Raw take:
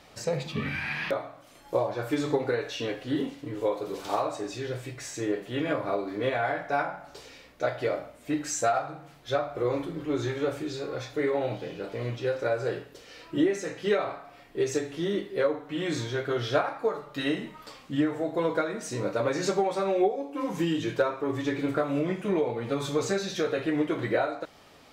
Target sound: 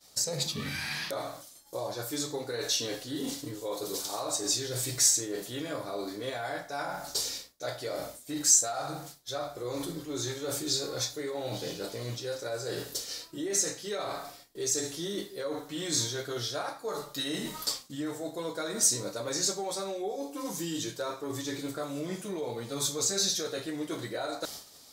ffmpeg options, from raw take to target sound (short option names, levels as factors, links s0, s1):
-af "agate=range=0.0224:threshold=0.00562:ratio=3:detection=peak,areverse,acompressor=threshold=0.0126:ratio=6,areverse,aexciter=amount=7:drive=5.8:freq=3800,volume=1.68"